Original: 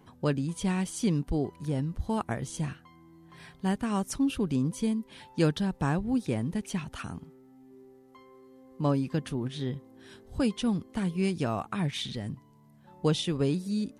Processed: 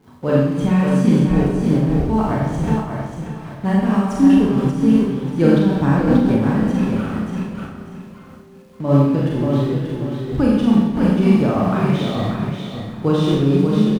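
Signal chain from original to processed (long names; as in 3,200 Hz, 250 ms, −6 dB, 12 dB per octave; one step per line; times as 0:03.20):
spectral magnitudes quantised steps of 15 dB
in parallel at −5 dB: bit-depth reduction 6 bits, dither none
on the sum: high-shelf EQ 4,500 Hz −11 dB
on a send: repeating echo 586 ms, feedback 27%, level −5.5 dB
on the sum: surface crackle 360 per second −48 dBFS
high-shelf EQ 2,200 Hz −7.5 dB
four-comb reverb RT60 1.2 s, combs from 29 ms, DRR −4.5 dB
amplitude modulation by smooth noise, depth 55%
level +6 dB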